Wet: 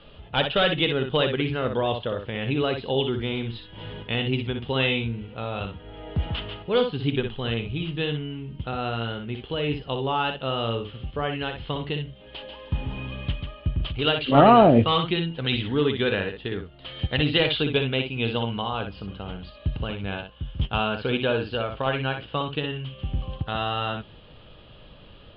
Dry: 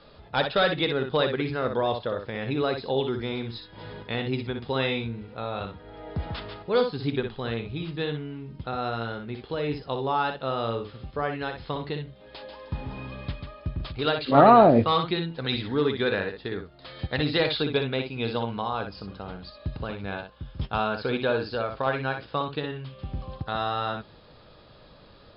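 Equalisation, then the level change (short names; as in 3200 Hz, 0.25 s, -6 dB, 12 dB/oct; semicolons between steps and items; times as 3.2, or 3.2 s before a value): synth low-pass 3000 Hz, resonance Q 8.4; tilt -2 dB/oct; -1.5 dB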